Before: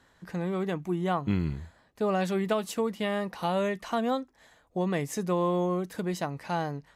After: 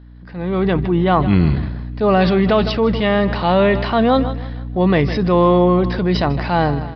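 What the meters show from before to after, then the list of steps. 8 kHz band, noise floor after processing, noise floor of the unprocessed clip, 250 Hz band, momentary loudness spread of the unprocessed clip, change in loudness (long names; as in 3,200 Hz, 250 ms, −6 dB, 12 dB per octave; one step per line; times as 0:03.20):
can't be measured, −35 dBFS, −64 dBFS, +14.0 dB, 7 LU, +14.0 dB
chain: mains hum 60 Hz, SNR 11 dB
automatic gain control gain up to 16 dB
downsampling to 11,025 Hz
on a send: repeating echo 158 ms, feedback 43%, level −17.5 dB
on the sum: transient designer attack −5 dB, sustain +6 dB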